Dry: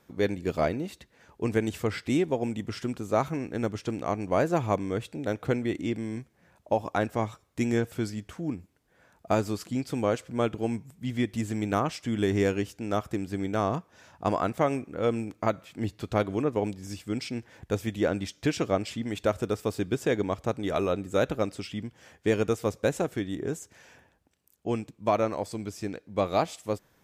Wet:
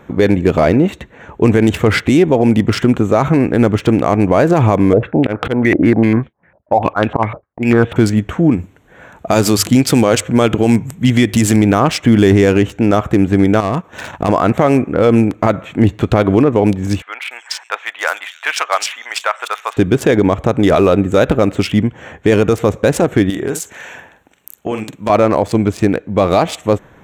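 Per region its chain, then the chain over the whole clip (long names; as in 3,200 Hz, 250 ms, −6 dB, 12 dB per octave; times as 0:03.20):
0:04.93–0:07.96: downward expander −51 dBFS + volume swells 204 ms + low-pass on a step sequencer 10 Hz 600–3,400 Hz
0:08.51–0:11.56: high-shelf EQ 2,900 Hz +8.5 dB + mains-hum notches 50/100 Hz
0:13.60–0:14.29: high-shelf EQ 2,500 Hz +10 dB + leveller curve on the samples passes 2 + downward compressor 16 to 1, threshold −34 dBFS
0:17.02–0:19.77: high-pass filter 930 Hz 24 dB per octave + multiband delay without the direct sound lows, highs 290 ms, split 3,700 Hz
0:23.30–0:25.10: spectral tilt +3 dB per octave + downward compressor 4 to 1, threshold −38 dBFS + double-tracking delay 46 ms −8 dB
whole clip: adaptive Wiener filter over 9 samples; boost into a limiter +23 dB; level −1 dB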